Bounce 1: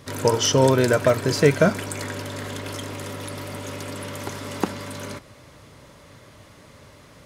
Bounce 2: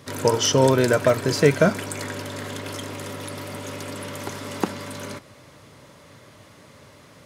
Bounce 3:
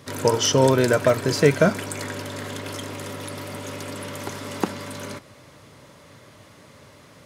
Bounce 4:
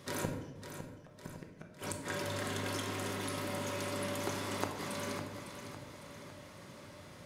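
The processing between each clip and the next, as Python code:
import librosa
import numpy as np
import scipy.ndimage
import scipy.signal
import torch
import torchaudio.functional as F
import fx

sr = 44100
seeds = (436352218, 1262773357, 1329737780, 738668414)

y1 = scipy.signal.sosfilt(scipy.signal.butter(2, 92.0, 'highpass', fs=sr, output='sos'), x)
y2 = y1
y3 = fx.gate_flip(y2, sr, shuts_db=-14.0, range_db=-41)
y3 = fx.echo_feedback(y3, sr, ms=555, feedback_pct=47, wet_db=-9.5)
y3 = fx.room_shoebox(y3, sr, seeds[0], volume_m3=530.0, walls='mixed', distance_m=0.98)
y3 = F.gain(torch.from_numpy(y3), -6.5).numpy()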